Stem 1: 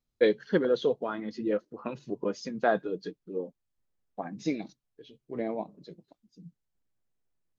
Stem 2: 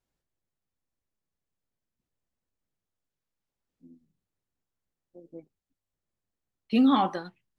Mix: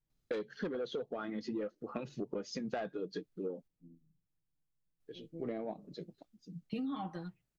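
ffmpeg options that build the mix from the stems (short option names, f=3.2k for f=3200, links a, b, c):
-filter_complex "[0:a]bandreject=f=990:w=6.6,asoftclip=type=tanh:threshold=-21dB,adelay=100,volume=1.5dB,asplit=3[a][b][c];[a]atrim=end=3.68,asetpts=PTS-STARTPTS,afade=t=out:st=3.676:d=0.004:c=hsin[d];[b]atrim=start=3.68:end=5,asetpts=PTS-STARTPTS,volume=0[e];[c]atrim=start=5,asetpts=PTS-STARTPTS,afade=t=in:d=0.004:c=hsin[f];[d][e][f]concat=n=3:v=0:a=1[g];[1:a]bass=f=250:g=12,treble=f=4k:g=-2,aecho=1:1:6.4:0.74,volume=-11dB[h];[g][h]amix=inputs=2:normalize=0,acompressor=threshold=-35dB:ratio=12"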